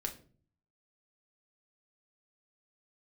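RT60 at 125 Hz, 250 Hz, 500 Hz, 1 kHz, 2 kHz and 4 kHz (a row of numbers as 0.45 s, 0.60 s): 0.80 s, 0.65 s, 0.50 s, 0.35 s, 0.35 s, 0.30 s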